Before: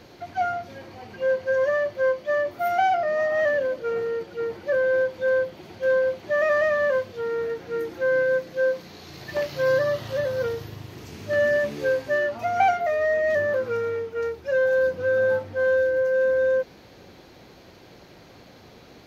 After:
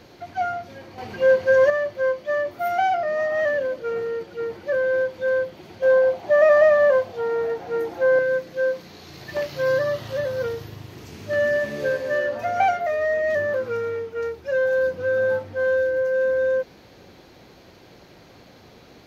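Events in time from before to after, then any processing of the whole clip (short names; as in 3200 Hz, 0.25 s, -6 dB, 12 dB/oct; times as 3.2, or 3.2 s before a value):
0.98–1.7 gain +6.5 dB
5.82–8.19 bell 750 Hz +13.5 dB 0.71 oct
11.57–12.16 reverb throw, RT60 2.6 s, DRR 6 dB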